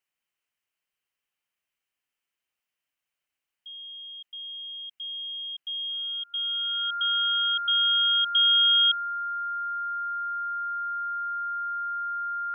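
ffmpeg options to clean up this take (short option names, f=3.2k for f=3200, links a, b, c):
-af "bandreject=f=1.4k:w=30,agate=range=-21dB:threshold=-79dB"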